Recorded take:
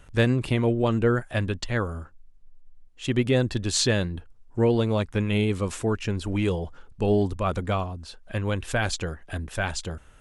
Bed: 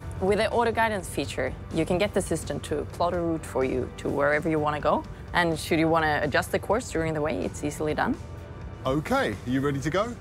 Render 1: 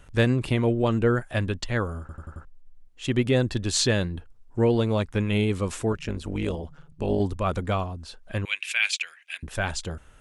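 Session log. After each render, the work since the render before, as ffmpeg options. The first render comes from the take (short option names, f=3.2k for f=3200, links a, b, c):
-filter_complex "[0:a]asettb=1/sr,asplit=3[a][b][c];[a]atrim=end=5.924[d];[b]atrim=start=5.92:end=7.2,asetpts=PTS-STARTPTS,afade=t=in:d=0.004:c=qsin,afade=t=out:st=1.276:d=0.004:c=qsin,tremolo=f=150:d=0.824[e];[c]atrim=start=7.196[f];[d][e]acrossfade=d=0.004:c1=hsin:c2=qsin[g];[g][f]acrossfade=d=0.004:c1=qsin:c2=hsin,asettb=1/sr,asplit=3[h][i][j];[h]atrim=end=8.454[k];[i]atrim=start=8.45:end=9.43,asetpts=PTS-STARTPTS,afade=t=in:d=0.004:c=qsin,afade=t=out:st=0.976:d=0.004:c=qsin,highpass=f=2.4k:t=q:w=5.5[l];[j]atrim=start=9.426[m];[k][l]acrossfade=d=0.004:c1=hsin:c2=qsin[n];[n][m]acrossfade=d=0.004:c1=qsin:c2=hsin,asplit=6[o][p][q][r][s][t];[o]atrim=end=2.092[u];[p]atrim=start=1.998:end=2.092[v];[q]atrim=start=1.998:end=2.092[w];[r]atrim=start=1.998:end=2.092[x];[s]atrim=start=1.998:end=2.092[y];[t]atrim=start=2.448[z];[u][v]acrossfade=d=0.004:c1=hsin:c2=hsin[aa];[aa][w]acrossfade=d=0.004:c1=hsin:c2=hsin[ab];[ab][x]acrossfade=d=0.004:c1=hsin:c2=hsin[ac];[ac][y]acrossfade=d=0.004:c1=hsin:c2=hsin[ad];[ad][z]acrossfade=d=0.004:c1=hsin:c2=hsin"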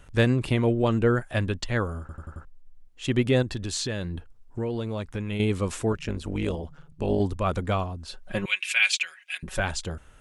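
-filter_complex "[0:a]asettb=1/sr,asplit=3[a][b][c];[a]atrim=end=3.424[d];[b]atrim=start=3.42:end=5.4,asetpts=PTS-STARTPTS,afade=t=in:d=0.004:c=qsin,afade=t=out:st=1.976:d=0.004:c=qsin,acompressor=threshold=-28dB:ratio=3:attack=3.2:release=140:knee=1:detection=peak[e];[c]atrim=start=5.396[f];[d][e]acrossfade=d=0.004:c1=hsin:c2=qsin[g];[g][f]acrossfade=d=0.004:c1=qsin:c2=hsin,asettb=1/sr,asplit=3[h][i][j];[h]atrim=end=8.074[k];[i]atrim=start=8.07:end=9.6,asetpts=PTS-STARTPTS,afade=t=in:d=0.004:c=qsin,afade=t=out:st=1.526:d=0.004:c=qsin,aecho=1:1:5.4:0.84,atrim=end_sample=67473[l];[j]atrim=start=9.596[m];[k][l]acrossfade=d=0.004:c1=hsin:c2=qsin[n];[n][m]acrossfade=d=0.004:c1=qsin:c2=hsin"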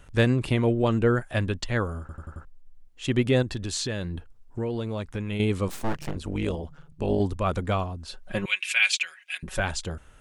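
-filter_complex "[0:a]asettb=1/sr,asplit=3[a][b][c];[a]atrim=end=5.684[d];[b]atrim=start=5.68:end=6.15,asetpts=PTS-STARTPTS,afade=t=in:d=0.004:c=qsin,afade=t=out:st=0.466:d=0.004:c=qsin,aeval=exprs='abs(val(0))':c=same[e];[c]atrim=start=6.146[f];[d][e]acrossfade=d=0.004:c1=hsin:c2=qsin[g];[g][f]acrossfade=d=0.004:c1=qsin:c2=hsin"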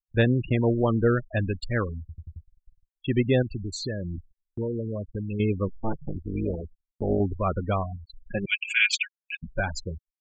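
-af "afftfilt=real='re*gte(hypot(re,im),0.0631)':imag='im*gte(hypot(re,im),0.0631)':win_size=1024:overlap=0.75,agate=range=-31dB:threshold=-42dB:ratio=16:detection=peak"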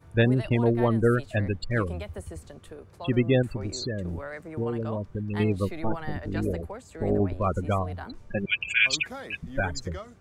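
-filter_complex "[1:a]volume=-15dB[a];[0:a][a]amix=inputs=2:normalize=0"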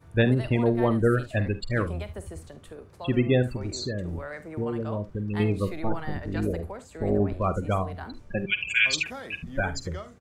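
-af "aecho=1:1:48|73:0.2|0.141"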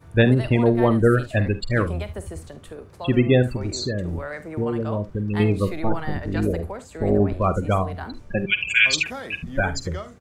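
-af "volume=5dB"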